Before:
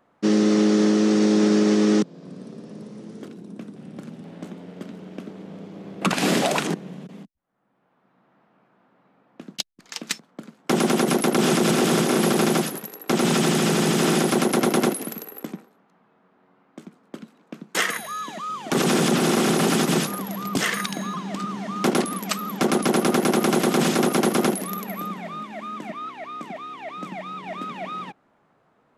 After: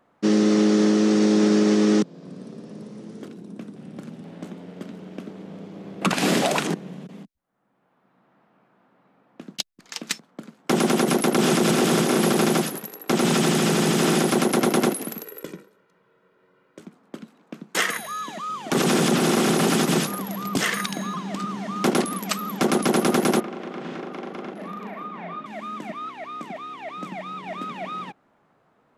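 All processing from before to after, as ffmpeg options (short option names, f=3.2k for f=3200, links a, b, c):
-filter_complex "[0:a]asettb=1/sr,asplit=3[a][b][c];[a]atrim=end=15.234[d];[b]atrim=start=15.23:end=16.8,asetpts=PTS-STARTPTS,afade=t=in:d=0.004:c=qsin,afade=t=out:st=1.566:d=0.004:c=qsin,equalizer=f=850:t=o:w=0.45:g=-10.5,bandreject=f=50:t=h:w=6,bandreject=f=100:t=h:w=6,bandreject=f=150:t=h:w=6,bandreject=f=200:t=h:w=6,bandreject=f=250:t=h:w=6,bandreject=f=300:t=h:w=6,bandreject=f=350:t=h:w=6,aecho=1:1:2.1:0.69,atrim=end_sample=69237[e];[c]atrim=start=16.796[f];[d][e]acrossfade=d=0.004:c1=hsin:c2=qsin[g];[g][f]acrossfade=d=0.004:c1=qsin:c2=hsin,asettb=1/sr,asplit=3[h][i][j];[h]atrim=end=23.404[k];[i]atrim=start=23.4:end=25.46,asetpts=PTS-STARTPTS,afade=t=in:d=0.004:c=qsin,afade=t=out:st=2.056:d=0.004:c=qsin,highpass=160,lowpass=2.5k,acompressor=threshold=-31dB:ratio=12:attack=3.2:release=140:knee=1:detection=peak,asplit=2[l][m];[m]adelay=40,volume=-3dB[n];[l][n]amix=inputs=2:normalize=0,atrim=end_sample=90846[o];[j]atrim=start=25.456[p];[k][o]acrossfade=d=0.004:c1=hsin:c2=qsin[q];[q][p]acrossfade=d=0.004:c1=qsin:c2=hsin"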